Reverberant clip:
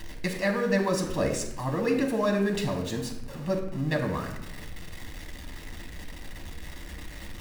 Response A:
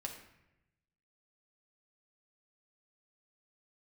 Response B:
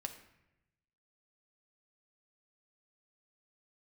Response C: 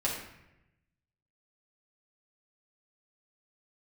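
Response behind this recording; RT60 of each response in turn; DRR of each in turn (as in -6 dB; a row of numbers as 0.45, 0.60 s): A; 0.90, 0.90, 0.90 s; 1.5, 5.5, -4.5 dB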